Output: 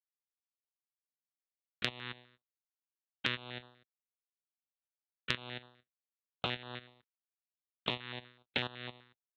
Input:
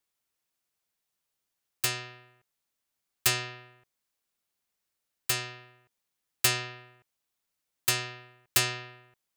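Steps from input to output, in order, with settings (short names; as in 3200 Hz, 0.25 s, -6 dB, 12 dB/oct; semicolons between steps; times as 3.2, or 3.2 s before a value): careless resampling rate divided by 8×, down filtered, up zero stuff; LPC vocoder at 8 kHz pitch kept; HPF 84 Hz 24 dB/oct; low shelf 230 Hz -7.5 dB; level quantiser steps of 17 dB; bell 3000 Hz -4 dB 2.2 oct; expander -59 dBFS; compressor 5:1, threshold -46 dBFS, peak gain reduction 14.5 dB; stepped notch 8 Hz 650–2200 Hz; gain +16 dB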